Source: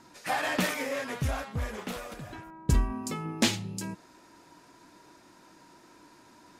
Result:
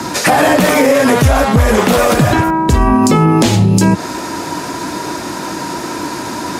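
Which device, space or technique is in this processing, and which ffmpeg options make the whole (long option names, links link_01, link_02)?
mastering chain: -filter_complex "[0:a]highpass=frequency=52:width=0.5412,highpass=frequency=52:width=1.3066,equalizer=frequency=2500:width_type=o:width=1.7:gain=-2.5,acrossover=split=82|440|920|7300[link_01][link_02][link_03][link_04][link_05];[link_01]acompressor=threshold=-38dB:ratio=4[link_06];[link_02]acompressor=threshold=-38dB:ratio=4[link_07];[link_03]acompressor=threshold=-41dB:ratio=4[link_08];[link_04]acompressor=threshold=-47dB:ratio=4[link_09];[link_05]acompressor=threshold=-55dB:ratio=4[link_10];[link_06][link_07][link_08][link_09][link_10]amix=inputs=5:normalize=0,acompressor=threshold=-40dB:ratio=2,asoftclip=type=tanh:threshold=-27dB,alimiter=level_in=35.5dB:limit=-1dB:release=50:level=0:latency=1,volume=-1dB"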